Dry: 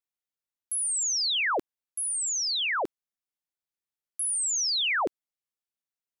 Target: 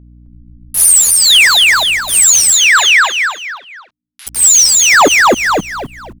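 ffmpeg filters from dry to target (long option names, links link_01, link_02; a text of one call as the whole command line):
ffmpeg -i in.wav -filter_complex "[0:a]afwtdn=0.0178,aemphasis=mode=reproduction:type=cd,aecho=1:1:7:0.42,asoftclip=type=tanh:threshold=-30.5dB,tremolo=f=2.2:d=0.95,acrusher=bits=8:mix=0:aa=0.000001,aeval=exprs='val(0)+0.000251*(sin(2*PI*60*n/s)+sin(2*PI*2*60*n/s)/2+sin(2*PI*3*60*n/s)/3+sin(2*PI*4*60*n/s)/4+sin(2*PI*5*60*n/s)/5)':channel_layout=same,asettb=1/sr,asplit=3[link_01][link_02][link_03];[link_01]atrim=end=2.534[link_04];[link_02]atrim=start=2.53:end=4.27,asetpts=PTS-STARTPTS,afade=type=in:duration=0.004:curve=qsin,afade=type=out:start_time=1.736:duration=0.004:curve=qsin,asuperpass=centerf=2500:order=4:qfactor=0.86[link_05];[link_03]atrim=start=4.266[link_06];[link_04][link_05]acrossfade=duration=0.004:curve1=hsin:curve2=qsin[link_07];[link_07][link_06]acrossfade=duration=0.004:curve1=qsin:curve2=hsin,asplit=5[link_08][link_09][link_10][link_11][link_12];[link_09]adelay=261,afreqshift=-53,volume=-3dB[link_13];[link_10]adelay=522,afreqshift=-106,volume=-12.6dB[link_14];[link_11]adelay=783,afreqshift=-159,volume=-22.3dB[link_15];[link_12]adelay=1044,afreqshift=-212,volume=-31.9dB[link_16];[link_08][link_13][link_14][link_15][link_16]amix=inputs=5:normalize=0,alimiter=level_in=35dB:limit=-1dB:release=50:level=0:latency=1,volume=-1dB" out.wav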